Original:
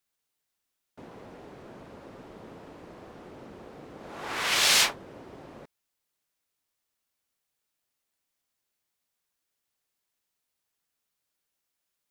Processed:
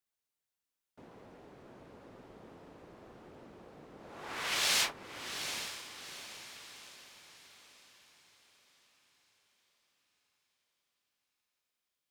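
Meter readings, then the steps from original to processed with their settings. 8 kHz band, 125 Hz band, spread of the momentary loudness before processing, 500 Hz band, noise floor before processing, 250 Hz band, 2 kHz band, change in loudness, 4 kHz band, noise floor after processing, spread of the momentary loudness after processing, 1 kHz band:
-7.5 dB, -7.0 dB, 16 LU, -7.5 dB, -83 dBFS, -7.5 dB, -7.5 dB, -12.0 dB, -7.5 dB, under -85 dBFS, 26 LU, -7.5 dB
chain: echo that smears into a reverb 798 ms, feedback 44%, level -8.5 dB; trim -8 dB

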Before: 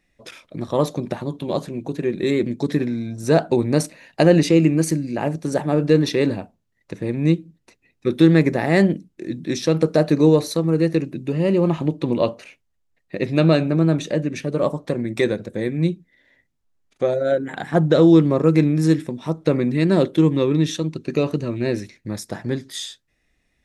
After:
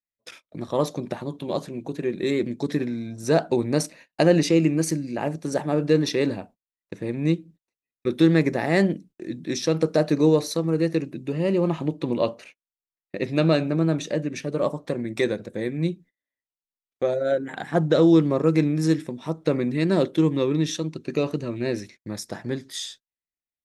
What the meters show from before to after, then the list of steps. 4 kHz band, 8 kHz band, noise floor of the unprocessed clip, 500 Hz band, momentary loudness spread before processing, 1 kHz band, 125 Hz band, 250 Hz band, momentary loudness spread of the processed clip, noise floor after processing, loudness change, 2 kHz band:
-2.0 dB, -1.0 dB, -70 dBFS, -3.5 dB, 13 LU, -3.0 dB, -5.5 dB, -4.0 dB, 13 LU, under -85 dBFS, -4.0 dB, -3.0 dB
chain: dynamic bell 5.5 kHz, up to +4 dB, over -47 dBFS, Q 3; gate -41 dBFS, range -31 dB; bass shelf 140 Hz -5.5 dB; trim -3 dB

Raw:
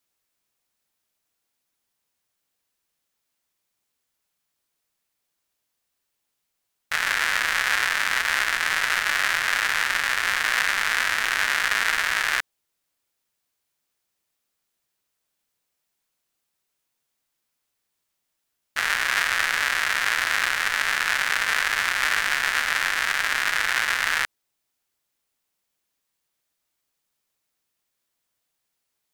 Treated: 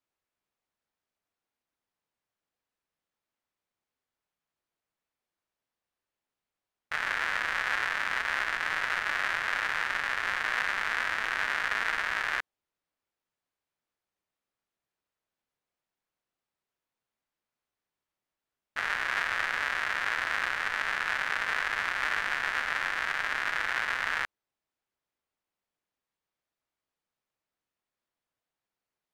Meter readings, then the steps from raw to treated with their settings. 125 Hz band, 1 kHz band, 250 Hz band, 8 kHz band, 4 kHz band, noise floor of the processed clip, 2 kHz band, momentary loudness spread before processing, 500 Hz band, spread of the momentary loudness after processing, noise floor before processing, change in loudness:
no reading, -5.0 dB, -5.0 dB, -16.5 dB, -11.0 dB, under -85 dBFS, -7.0 dB, 2 LU, -4.0 dB, 2 LU, -79 dBFS, -7.5 dB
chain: low-pass 1.2 kHz 6 dB/octave; bass shelf 490 Hz -4 dB; trim -1.5 dB

